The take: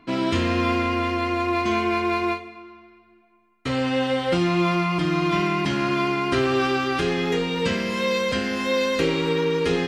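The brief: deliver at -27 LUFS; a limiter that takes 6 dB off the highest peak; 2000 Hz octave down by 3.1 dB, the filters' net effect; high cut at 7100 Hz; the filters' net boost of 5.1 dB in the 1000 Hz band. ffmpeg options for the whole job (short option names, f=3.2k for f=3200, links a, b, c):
-af "lowpass=7.1k,equalizer=f=1k:t=o:g=7.5,equalizer=f=2k:t=o:g=-6,volume=-4dB,alimiter=limit=-18.5dB:level=0:latency=1"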